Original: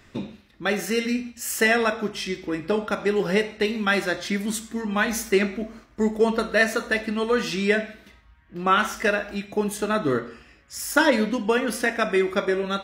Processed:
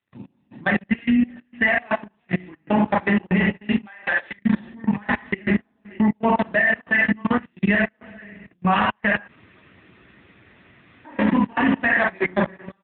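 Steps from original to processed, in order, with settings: chunks repeated in reverse 332 ms, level -14 dB; low-pass 2.9 kHz 12 dB/octave; comb 1.1 ms, depth 83%; reverberation, pre-delay 33 ms, DRR -1.5 dB; level held to a coarse grid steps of 23 dB; trance gate ".x..xx.xxxx.xx" 118 bpm -24 dB; 3.87–4.39 s: high-pass 510 Hz 12 dB/octave; 9.29–11.05 s: room tone; trim +7 dB; AMR-NB 6.7 kbps 8 kHz

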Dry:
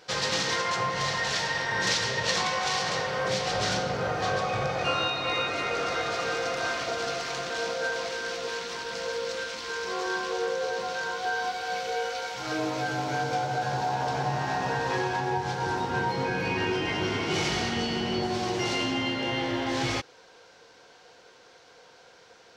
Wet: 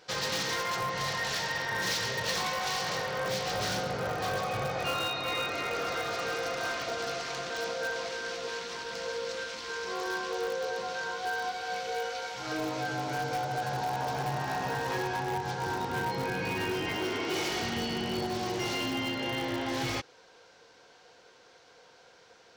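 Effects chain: in parallel at -9 dB: integer overflow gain 21 dB; 16.97–17.62 s: on the sum: resonant low shelf 230 Hz -7 dB, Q 1.5; trim -6 dB

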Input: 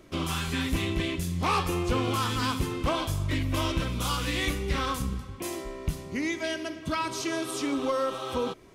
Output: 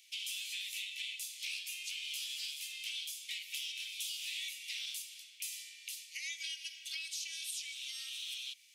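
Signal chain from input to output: steep high-pass 2.4 kHz 48 dB/octave; compression, threshold -42 dBFS, peak gain reduction 11 dB; trim +3.5 dB

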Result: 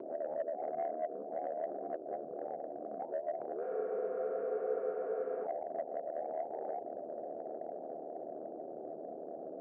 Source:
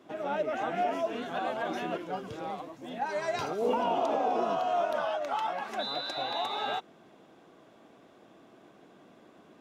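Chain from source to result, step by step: one-bit delta coder 16 kbps, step -36 dBFS; echo that smears into a reverb 1151 ms, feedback 52%, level -13 dB; ring modulator 38 Hz; steep low-pass 710 Hz 72 dB/octave; compression 3:1, threshold -41 dBFS, peak gain reduction 11 dB; saturation -31.5 dBFS, distortion -24 dB; upward compressor, threshold -46 dBFS; high-pass 530 Hz 12 dB/octave; spectral freeze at 3.64 s, 1.80 s; trim +8.5 dB

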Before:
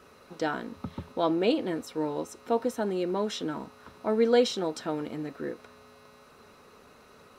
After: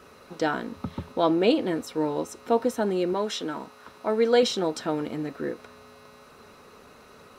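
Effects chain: 3.13–4.43 s: bass shelf 240 Hz -10 dB; trim +4 dB

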